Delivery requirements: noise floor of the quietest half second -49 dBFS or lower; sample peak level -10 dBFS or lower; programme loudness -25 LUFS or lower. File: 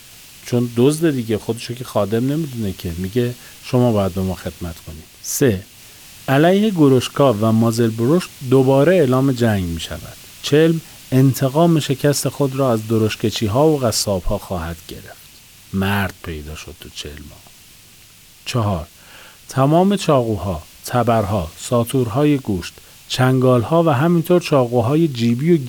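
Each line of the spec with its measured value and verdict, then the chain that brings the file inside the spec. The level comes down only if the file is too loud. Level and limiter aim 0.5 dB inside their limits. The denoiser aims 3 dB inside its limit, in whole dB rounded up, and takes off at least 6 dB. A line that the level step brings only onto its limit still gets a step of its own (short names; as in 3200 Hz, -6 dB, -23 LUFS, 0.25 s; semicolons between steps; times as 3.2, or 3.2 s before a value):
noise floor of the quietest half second -45 dBFS: fail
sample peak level -3.5 dBFS: fail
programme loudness -17.5 LUFS: fail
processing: gain -8 dB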